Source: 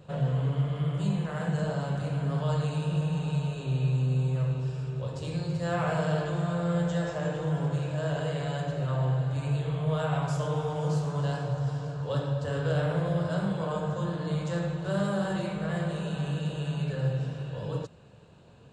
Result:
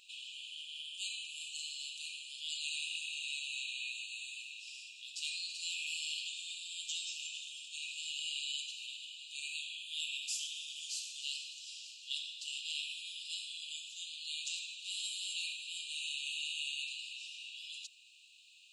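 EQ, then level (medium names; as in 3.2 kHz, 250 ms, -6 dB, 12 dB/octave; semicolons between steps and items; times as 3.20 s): brick-wall FIR high-pass 2.4 kHz; +8.5 dB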